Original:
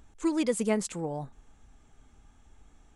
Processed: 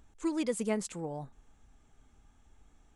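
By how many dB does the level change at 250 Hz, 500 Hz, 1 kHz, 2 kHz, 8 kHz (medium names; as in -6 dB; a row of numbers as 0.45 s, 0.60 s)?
-4.5 dB, -4.5 dB, -4.5 dB, -4.5 dB, -4.5 dB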